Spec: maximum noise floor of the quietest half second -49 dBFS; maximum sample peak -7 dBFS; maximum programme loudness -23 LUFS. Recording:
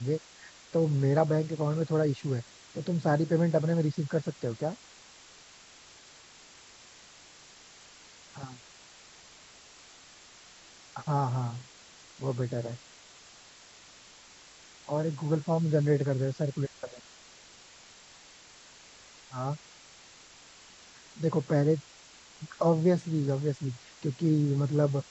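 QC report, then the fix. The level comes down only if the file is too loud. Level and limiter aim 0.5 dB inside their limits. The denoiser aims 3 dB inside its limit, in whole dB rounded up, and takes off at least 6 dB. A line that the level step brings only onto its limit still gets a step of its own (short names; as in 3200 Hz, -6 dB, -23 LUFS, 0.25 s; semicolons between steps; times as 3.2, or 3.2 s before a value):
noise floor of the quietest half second -54 dBFS: OK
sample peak -11.0 dBFS: OK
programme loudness -29.5 LUFS: OK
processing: none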